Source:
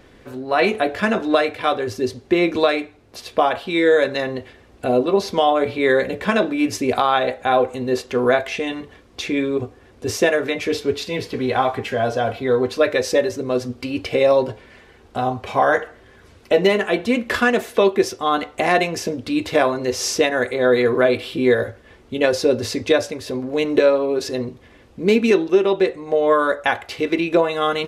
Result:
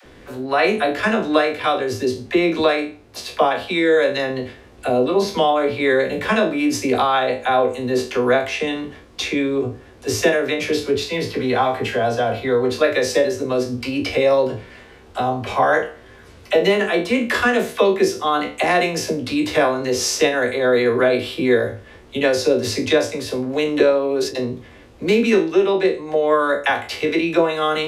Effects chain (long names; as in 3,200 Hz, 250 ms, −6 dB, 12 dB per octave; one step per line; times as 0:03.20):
peak hold with a decay on every bin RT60 0.33 s
0:23.88–0:24.37: noise gate with hold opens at −13 dBFS
all-pass dispersion lows, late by 51 ms, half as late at 410 Hz
in parallel at −0.5 dB: downward compressor, threshold −23 dBFS, peak gain reduction 13.5 dB
on the sum: level −3 dB